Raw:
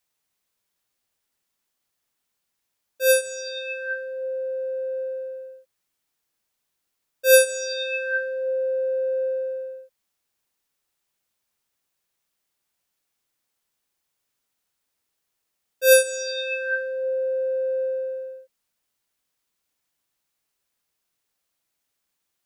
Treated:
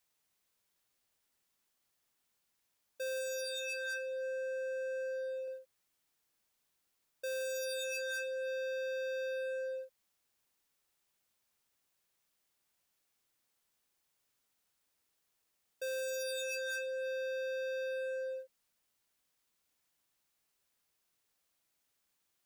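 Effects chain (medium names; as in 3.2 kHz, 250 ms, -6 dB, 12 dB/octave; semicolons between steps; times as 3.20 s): 3.44–5.48 s: bass shelf 370 Hz -6 dB; waveshaping leveller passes 1; saturation -37 dBFS, distortion -1 dB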